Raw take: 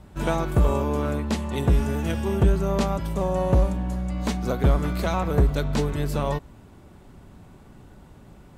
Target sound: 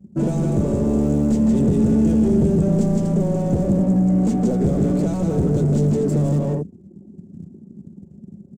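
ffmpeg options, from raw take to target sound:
ffmpeg -i in.wav -filter_complex "[0:a]bandreject=frequency=60:width_type=h:width=6,bandreject=frequency=120:width_type=h:width=6,bandreject=frequency=180:width_type=h:width=6,bandreject=frequency=240:width_type=h:width=6,bandreject=frequency=300:width_type=h:width=6,bandreject=frequency=360:width_type=h:width=6,bandreject=frequency=420:width_type=h:width=6,aecho=1:1:163.3|244.9:0.562|0.251,anlmdn=2.51,highpass=frequency=76:width=0.5412,highpass=frequency=76:width=1.3066,equalizer=frequency=160:width=3:gain=3.5,aeval=exprs='0.501*(cos(1*acos(clip(val(0)/0.501,-1,1)))-cos(1*PI/2))+0.0891*(cos(6*acos(clip(val(0)/0.501,-1,1)))-cos(6*PI/2))+0.0316*(cos(8*acos(clip(val(0)/0.501,-1,1)))-cos(8*PI/2))':channel_layout=same,acrusher=bits=7:mode=log:mix=0:aa=0.000001,acrossover=split=140|3000[link_01][link_02][link_03];[link_02]acompressor=threshold=-27dB:ratio=6[link_04];[link_01][link_04][link_03]amix=inputs=3:normalize=0,asplit=2[link_05][link_06];[link_06]highpass=frequency=720:poles=1,volume=29dB,asoftclip=type=tanh:threshold=-15dB[link_07];[link_05][link_07]amix=inputs=2:normalize=0,lowpass=frequency=3200:poles=1,volume=-6dB,firequalizer=gain_entry='entry(110,0);entry(200,8);entry(1000,-20);entry(2400,-23);entry(3900,-23);entry(7500,-4);entry(11000,-18)':delay=0.05:min_phase=1,volume=2.5dB" out.wav

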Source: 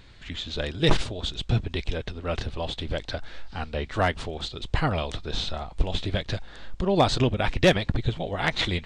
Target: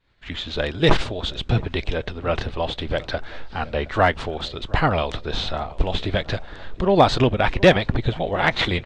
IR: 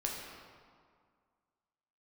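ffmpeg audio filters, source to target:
-filter_complex "[0:a]asplit=2[link_01][link_02];[link_02]highpass=frequency=720:poles=1,volume=4dB,asoftclip=type=tanh:threshold=-11dB[link_03];[link_01][link_03]amix=inputs=2:normalize=0,lowpass=frequency=1700:poles=1,volume=-6dB,agate=range=-33dB:threshold=-43dB:ratio=3:detection=peak,asplit=2[link_04][link_05];[link_05]adelay=718,lowpass=frequency=1100:poles=1,volume=-19dB,asplit=2[link_06][link_07];[link_07]adelay=718,lowpass=frequency=1100:poles=1,volume=0.53,asplit=2[link_08][link_09];[link_09]adelay=718,lowpass=frequency=1100:poles=1,volume=0.53,asplit=2[link_10][link_11];[link_11]adelay=718,lowpass=frequency=1100:poles=1,volume=0.53[link_12];[link_04][link_06][link_08][link_10][link_12]amix=inputs=5:normalize=0,volume=8.5dB"

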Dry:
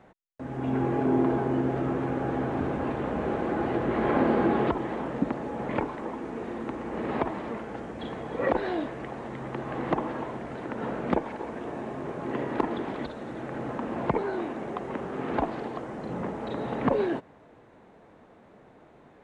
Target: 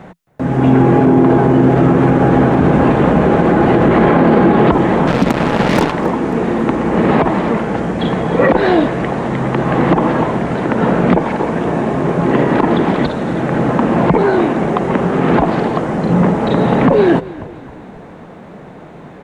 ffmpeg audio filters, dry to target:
ffmpeg -i in.wav -filter_complex "[0:a]equalizer=frequency=170:width_type=o:width=0.41:gain=9.5,asettb=1/sr,asplit=3[link_01][link_02][link_03];[link_01]atrim=end=5.074[link_04];[link_02]atrim=start=5.07:end=5.92,asetpts=PTS-STARTPTS,afade=type=in:duration=0.004:curve=qsin,afade=type=out:start_time=0.846:duration=0.004:curve=qsin,acrusher=bits=4:mix=0:aa=0.5[link_05];[link_03]atrim=start=5.916[link_06];[link_04][link_05]acrossfade=duration=0.004:curve1=hsin:curve2=qsin[link_07];[link_07][link_06]acrossfade=duration=0.004:curve1=qsin:curve2=hsin,asplit=5[link_08][link_09][link_10][link_11][link_12];[link_09]adelay=269,afreqshift=-37,volume=-21dB[link_13];[link_10]adelay=538,afreqshift=-74,volume=-26.8dB[link_14];[link_11]adelay=807,afreqshift=-111,volume=-32.7dB[link_15];[link_12]adelay=1076,afreqshift=-148,volume=-38.5dB[link_16];[link_08][link_13][link_14][link_15][link_16]amix=inputs=5:normalize=0,alimiter=level_in=19dB:limit=-1dB:release=50:level=0:latency=1,volume=-1dB" out.wav

